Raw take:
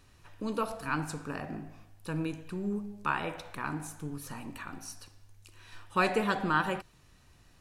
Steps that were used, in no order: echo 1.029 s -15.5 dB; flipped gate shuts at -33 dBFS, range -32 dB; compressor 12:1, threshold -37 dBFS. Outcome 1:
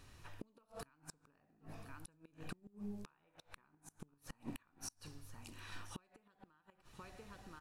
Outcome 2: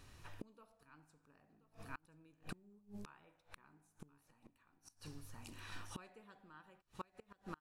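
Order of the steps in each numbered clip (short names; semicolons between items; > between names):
compressor > echo > flipped gate; echo > flipped gate > compressor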